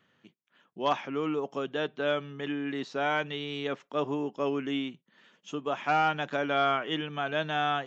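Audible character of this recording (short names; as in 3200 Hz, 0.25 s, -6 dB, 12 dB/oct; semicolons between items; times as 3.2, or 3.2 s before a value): noise floor -74 dBFS; spectral tilt -3.0 dB/oct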